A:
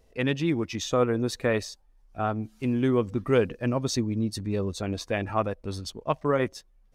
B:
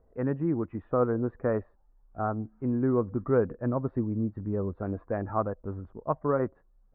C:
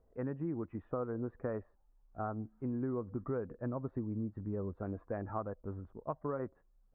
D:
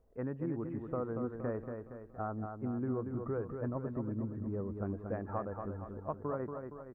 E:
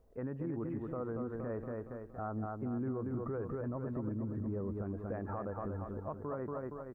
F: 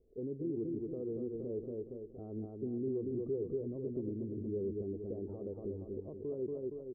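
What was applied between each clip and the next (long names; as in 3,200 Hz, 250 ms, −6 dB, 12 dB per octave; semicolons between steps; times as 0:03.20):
Butterworth low-pass 1,500 Hz 36 dB per octave; level −2 dB
downward compressor, threshold −27 dBFS, peak gain reduction 8.5 dB; level −6 dB
repeating echo 233 ms, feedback 51%, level −6 dB
brickwall limiter −33 dBFS, peak gain reduction 10 dB; level +3 dB
transistor ladder low-pass 440 Hz, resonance 65%; level +5.5 dB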